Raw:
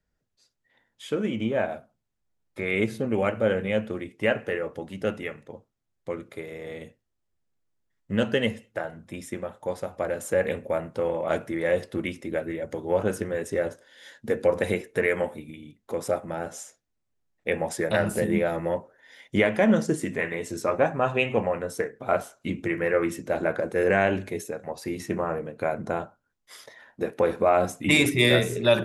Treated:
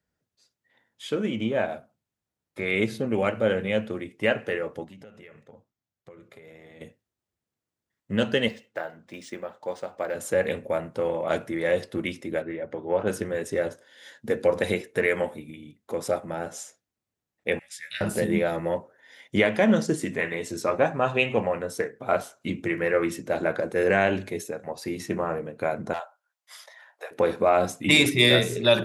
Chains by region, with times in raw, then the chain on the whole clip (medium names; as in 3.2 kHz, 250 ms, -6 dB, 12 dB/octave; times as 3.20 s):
4.84–6.81 s: peaking EQ 9.7 kHz -10 dB 0.25 oct + compression 16:1, threshold -38 dBFS + flange 1.1 Hz, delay 0.9 ms, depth 1.1 ms, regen -65%
8.48–10.15 s: high-pass 370 Hz 6 dB/octave + decimation joined by straight lines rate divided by 3×
12.42–13.07 s: low-pass 2.6 kHz + bass shelf 200 Hz -6 dB
17.59–18.01 s: inverse Chebyshev high-pass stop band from 1 kHz + tilt EQ -2.5 dB/octave + doubling 16 ms -3.5 dB
25.93–27.11 s: steep high-pass 600 Hz + hard clipper -25 dBFS
whole clip: high-pass 78 Hz; dynamic bell 4.2 kHz, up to +6 dB, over -48 dBFS, Q 1.4